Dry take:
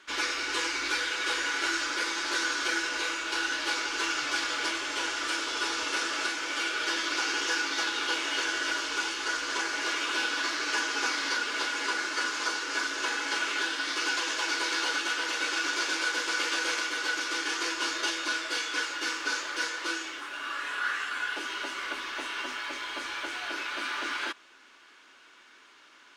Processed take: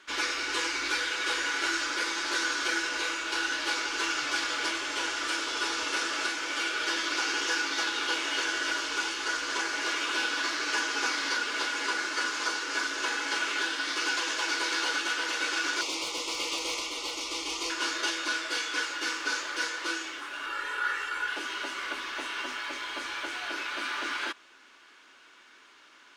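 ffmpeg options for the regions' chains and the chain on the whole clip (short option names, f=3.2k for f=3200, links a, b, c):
-filter_complex "[0:a]asettb=1/sr,asplit=3[a][b][c];[a]atrim=end=15.814[d];[b]atrim=start=15.81:end=17.7,asetpts=PTS-STARTPTS,afade=t=in:d=0.004:c=qsin,afade=t=out:st=1.886:d=0.004:c=qsin,asubboost=boost=8.5:cutoff=69,asoftclip=type=hard:threshold=-23dB,asuperstop=centerf=1600:order=4:qfactor=1.6[e];[c]atrim=start=17.696[f];[d][e]acrossfade=d=0.004:c1=hsin:c2=qsin[g];[g][f]acrossfade=d=0.004:c1=qsin:c2=hsin,asettb=1/sr,asplit=3[h][i][j];[h]atrim=end=20.464[k];[i]atrim=start=20.46:end=21.28,asetpts=PTS-STARTPTS,afade=t=in:d=0.004:c=qsin,afade=t=out:st=0.816:d=0.004:c=qsin,lowpass=f=1.7k:p=1,aemphasis=mode=production:type=50fm,aecho=1:1:2.2:0.85,atrim=end_sample=36162[l];[j]atrim=start=21.276[m];[k][l]acrossfade=d=0.004:c1=hsin:c2=qsin[n];[n][m]acrossfade=d=0.004:c1=qsin:c2=hsin"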